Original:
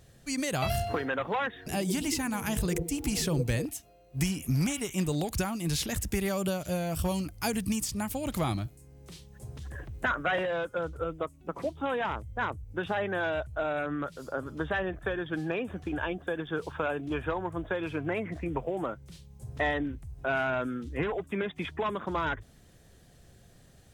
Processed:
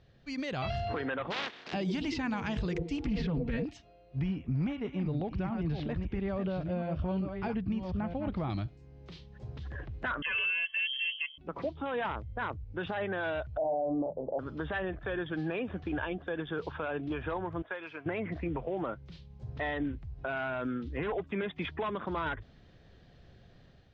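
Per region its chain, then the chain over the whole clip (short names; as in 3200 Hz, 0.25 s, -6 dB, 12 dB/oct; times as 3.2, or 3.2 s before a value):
1.3–1.72 spectral contrast lowered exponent 0.2 + BPF 200–8000 Hz
3.05–3.64 tone controls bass +8 dB, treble -15 dB + comb 4.3 ms, depth 86% + Doppler distortion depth 0.27 ms
4.19–8.5 reverse delay 0.658 s, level -7.5 dB + tape spacing loss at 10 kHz 38 dB
10.22–11.38 high shelf 2100 Hz -10.5 dB + comb 1.9 ms, depth 99% + inverted band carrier 3200 Hz
13.57–14.39 elliptic low-pass 880 Hz + bell 640 Hz +12 dB 0.9 oct + doubler 38 ms -7 dB
17.62–18.06 HPF 1500 Hz 6 dB/oct + bell 3600 Hz -7 dB 0.67 oct
whole clip: inverse Chebyshev low-pass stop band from 9900 Hz, stop band 50 dB; limiter -25 dBFS; AGC gain up to 5 dB; gain -5 dB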